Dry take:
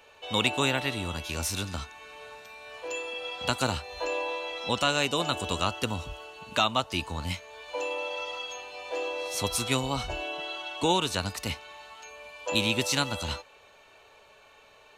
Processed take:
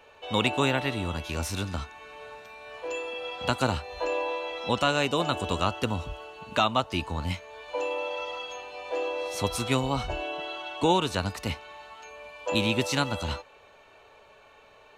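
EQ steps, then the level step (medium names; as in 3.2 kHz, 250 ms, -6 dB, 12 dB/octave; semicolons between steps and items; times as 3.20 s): treble shelf 2.9 kHz -9 dB; +3.0 dB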